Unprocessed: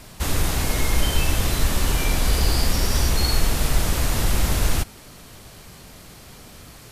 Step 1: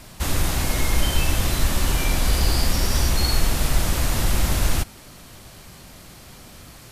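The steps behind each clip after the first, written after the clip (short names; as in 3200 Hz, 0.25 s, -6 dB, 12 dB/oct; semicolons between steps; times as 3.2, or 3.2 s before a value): notch 440 Hz, Q 12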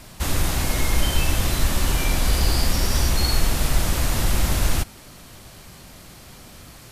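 nothing audible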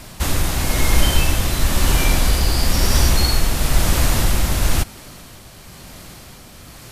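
tremolo 1 Hz, depth 33%; gain +5.5 dB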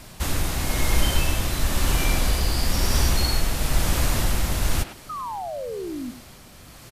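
painted sound fall, 5.09–6.11, 230–1300 Hz -26 dBFS; speakerphone echo 0.1 s, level -8 dB; gain -5.5 dB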